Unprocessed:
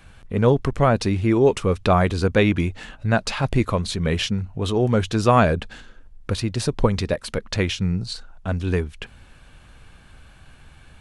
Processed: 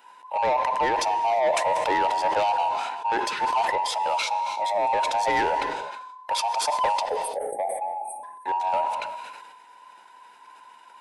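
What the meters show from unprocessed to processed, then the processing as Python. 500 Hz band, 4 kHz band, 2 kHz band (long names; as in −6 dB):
−5.5 dB, −2.5 dB, −2.0 dB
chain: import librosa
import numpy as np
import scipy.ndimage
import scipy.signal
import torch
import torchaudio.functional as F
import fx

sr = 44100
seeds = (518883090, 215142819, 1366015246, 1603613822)

y = fx.band_invert(x, sr, width_hz=1000)
y = scipy.signal.sosfilt(scipy.signal.butter(2, 360.0, 'highpass', fs=sr, output='sos'), y)
y = fx.spec_erase(y, sr, start_s=7.03, length_s=1.21, low_hz=850.0, high_hz=8200.0)
y = fx.dynamic_eq(y, sr, hz=830.0, q=0.86, threshold_db=-31.0, ratio=4.0, max_db=4)
y = 10.0 ** (-13.5 / 20.0) * np.tanh(y / 10.0 ** (-13.5 / 20.0))
y = fx.rev_gated(y, sr, seeds[0], gate_ms=380, shape='flat', drr_db=12.0)
y = fx.sustainer(y, sr, db_per_s=34.0)
y = F.gain(torch.from_numpy(y), -5.0).numpy()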